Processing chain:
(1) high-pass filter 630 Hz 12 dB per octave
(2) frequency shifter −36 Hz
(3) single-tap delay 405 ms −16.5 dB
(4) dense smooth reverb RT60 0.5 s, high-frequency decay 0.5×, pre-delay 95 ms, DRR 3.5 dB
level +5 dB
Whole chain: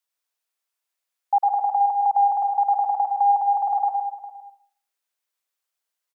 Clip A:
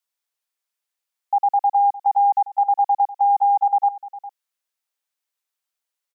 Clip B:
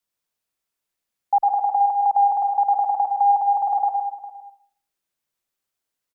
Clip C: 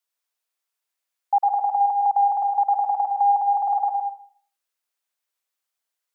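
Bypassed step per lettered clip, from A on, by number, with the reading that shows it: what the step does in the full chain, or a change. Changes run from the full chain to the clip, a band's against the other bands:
4, change in integrated loudness +2.0 LU
1, change in integrated loudness +1.0 LU
3, change in momentary loudness spread −3 LU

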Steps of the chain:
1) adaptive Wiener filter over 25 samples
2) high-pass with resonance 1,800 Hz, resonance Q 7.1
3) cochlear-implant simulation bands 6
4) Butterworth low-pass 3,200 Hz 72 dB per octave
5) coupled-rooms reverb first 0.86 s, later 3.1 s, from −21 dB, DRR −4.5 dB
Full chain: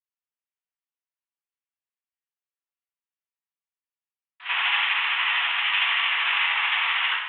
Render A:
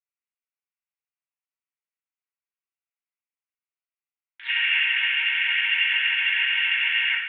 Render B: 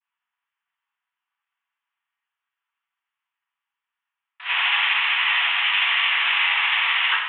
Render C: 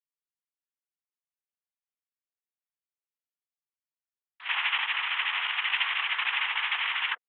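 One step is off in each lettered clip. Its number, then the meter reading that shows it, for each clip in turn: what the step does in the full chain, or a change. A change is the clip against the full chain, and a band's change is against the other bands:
3, change in integrated loudness +1.0 LU
1, change in integrated loudness +3.0 LU
5, change in integrated loudness −5.5 LU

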